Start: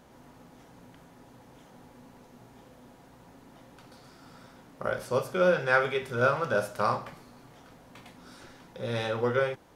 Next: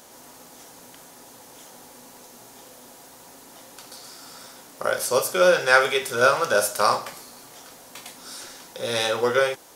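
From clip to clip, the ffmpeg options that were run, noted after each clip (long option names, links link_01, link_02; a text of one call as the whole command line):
ffmpeg -i in.wav -af "bass=frequency=250:gain=-13,treble=frequency=4000:gain=15,volume=7dB" out.wav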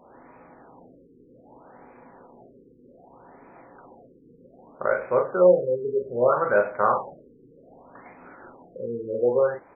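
ffmpeg -i in.wav -filter_complex "[0:a]highshelf=frequency=2600:gain=-9.5,asplit=2[link_01][link_02];[link_02]adelay=39,volume=-5dB[link_03];[link_01][link_03]amix=inputs=2:normalize=0,afftfilt=real='re*lt(b*sr/1024,480*pow(2600/480,0.5+0.5*sin(2*PI*0.64*pts/sr)))':imag='im*lt(b*sr/1024,480*pow(2600/480,0.5+0.5*sin(2*PI*0.64*pts/sr)))':win_size=1024:overlap=0.75" out.wav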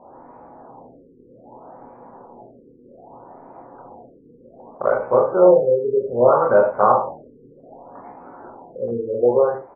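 ffmpeg -i in.wav -af "lowpass=frequency=870:width_type=q:width=2,aecho=1:1:25|77:0.422|0.266,volume=2.5dB" -ar 32000 -c:a aac -b:a 16k out.aac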